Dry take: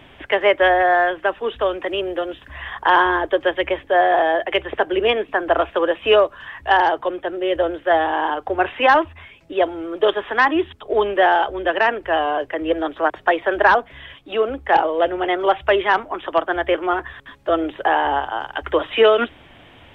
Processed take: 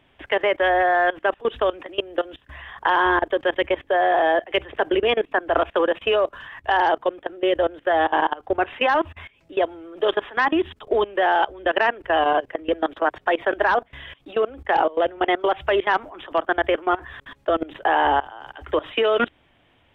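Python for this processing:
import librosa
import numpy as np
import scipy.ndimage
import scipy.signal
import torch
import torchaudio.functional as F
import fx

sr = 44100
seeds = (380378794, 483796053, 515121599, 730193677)

y = fx.level_steps(x, sr, step_db=21)
y = y * librosa.db_to_amplitude(3.0)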